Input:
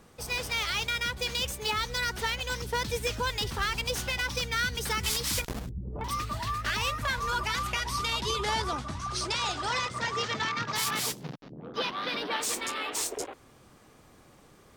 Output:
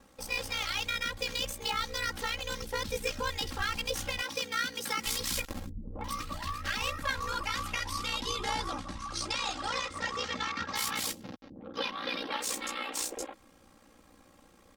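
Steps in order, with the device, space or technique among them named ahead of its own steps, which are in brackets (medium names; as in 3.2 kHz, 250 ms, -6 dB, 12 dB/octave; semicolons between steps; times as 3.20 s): 4.22–5.06 s: high-pass 150 Hz 24 dB/octave; ring-modulated robot voice (ring modulator 30 Hz; comb 3.7 ms); trim -1.5 dB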